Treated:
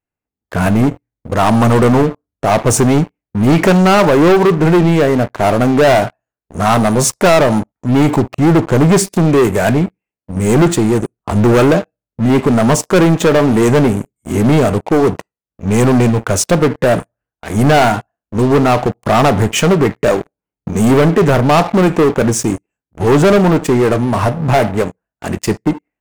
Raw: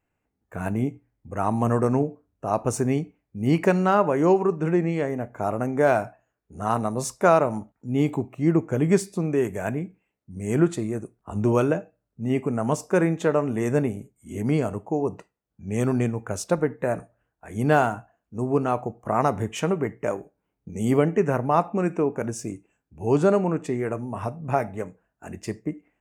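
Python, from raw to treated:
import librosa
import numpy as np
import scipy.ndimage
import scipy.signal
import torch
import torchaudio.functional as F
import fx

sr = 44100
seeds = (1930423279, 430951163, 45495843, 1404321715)

y = fx.leveller(x, sr, passes=5)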